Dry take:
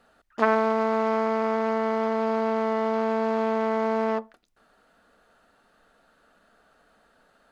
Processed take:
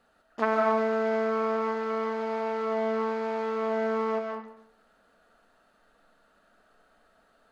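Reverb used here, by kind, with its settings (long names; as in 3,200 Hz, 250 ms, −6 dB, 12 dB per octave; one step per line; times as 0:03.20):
comb and all-pass reverb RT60 0.76 s, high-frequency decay 0.65×, pre-delay 105 ms, DRR 1.5 dB
level −5 dB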